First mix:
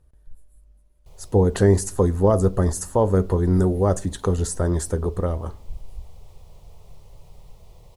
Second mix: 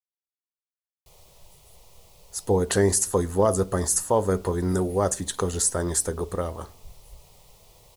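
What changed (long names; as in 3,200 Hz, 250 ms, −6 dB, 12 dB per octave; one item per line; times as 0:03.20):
speech: entry +1.15 s
master: add spectral tilt +2.5 dB per octave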